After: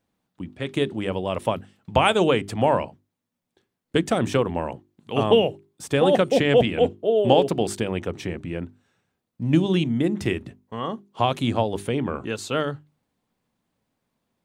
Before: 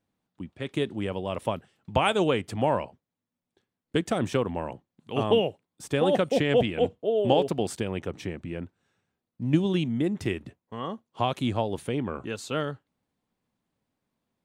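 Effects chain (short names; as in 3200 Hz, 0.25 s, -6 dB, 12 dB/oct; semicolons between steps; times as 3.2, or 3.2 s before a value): notches 50/100/150/200/250/300/350/400 Hz; gain +5 dB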